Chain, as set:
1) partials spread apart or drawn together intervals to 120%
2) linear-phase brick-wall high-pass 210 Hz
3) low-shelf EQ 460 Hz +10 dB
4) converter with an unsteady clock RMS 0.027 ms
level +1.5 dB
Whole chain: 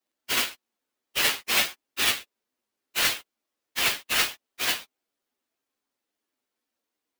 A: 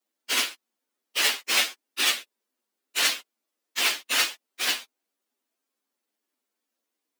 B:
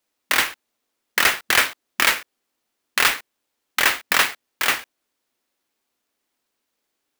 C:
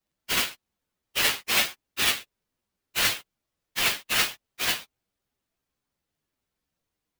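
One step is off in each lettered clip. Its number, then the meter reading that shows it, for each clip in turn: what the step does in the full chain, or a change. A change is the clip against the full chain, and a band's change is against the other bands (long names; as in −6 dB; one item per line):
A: 4, 250 Hz band −3.0 dB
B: 1, 1 kHz band +5.5 dB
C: 2, 125 Hz band +4.0 dB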